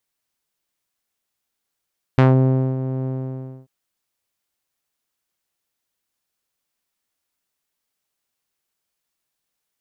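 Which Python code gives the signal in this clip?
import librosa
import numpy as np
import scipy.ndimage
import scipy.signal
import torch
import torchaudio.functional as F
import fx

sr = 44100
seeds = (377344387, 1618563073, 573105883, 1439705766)

y = fx.sub_voice(sr, note=48, wave='saw', cutoff_hz=510.0, q=0.78, env_oct=2.5, env_s=0.17, attack_ms=1.4, decay_s=0.58, sustain_db=-12.0, release_s=0.61, note_s=0.88, slope=12)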